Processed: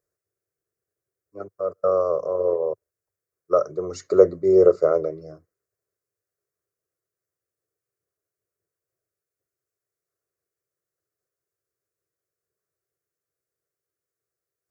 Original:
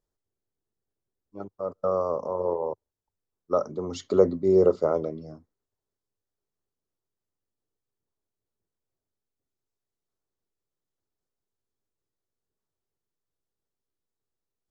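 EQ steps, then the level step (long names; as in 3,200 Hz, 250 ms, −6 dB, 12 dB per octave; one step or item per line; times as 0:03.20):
high-pass filter 110 Hz 12 dB per octave
phaser with its sweep stopped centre 880 Hz, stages 6
+6.0 dB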